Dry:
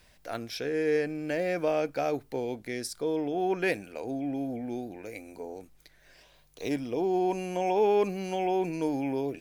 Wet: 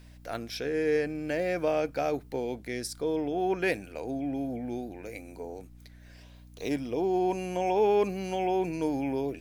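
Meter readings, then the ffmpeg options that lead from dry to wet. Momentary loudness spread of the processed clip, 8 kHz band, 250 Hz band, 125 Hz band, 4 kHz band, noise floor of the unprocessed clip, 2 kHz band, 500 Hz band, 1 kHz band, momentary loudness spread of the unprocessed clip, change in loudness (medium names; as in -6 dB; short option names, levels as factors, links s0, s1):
12 LU, 0.0 dB, 0.0 dB, +0.5 dB, 0.0 dB, -60 dBFS, 0.0 dB, 0.0 dB, 0.0 dB, 12 LU, 0.0 dB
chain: -af "aeval=exprs='val(0)+0.00316*(sin(2*PI*60*n/s)+sin(2*PI*2*60*n/s)/2+sin(2*PI*3*60*n/s)/3+sin(2*PI*4*60*n/s)/4+sin(2*PI*5*60*n/s)/5)':c=same"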